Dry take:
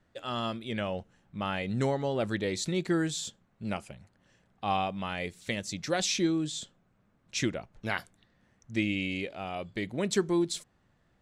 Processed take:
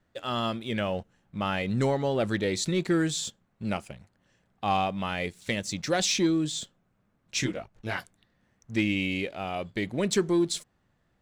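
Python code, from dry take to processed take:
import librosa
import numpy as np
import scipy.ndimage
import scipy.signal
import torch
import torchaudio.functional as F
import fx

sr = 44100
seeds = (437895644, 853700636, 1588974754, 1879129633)

y = fx.leveller(x, sr, passes=1)
y = fx.detune_double(y, sr, cents=fx.line((7.42, 27.0), (7.99, 11.0)), at=(7.42, 7.99), fade=0.02)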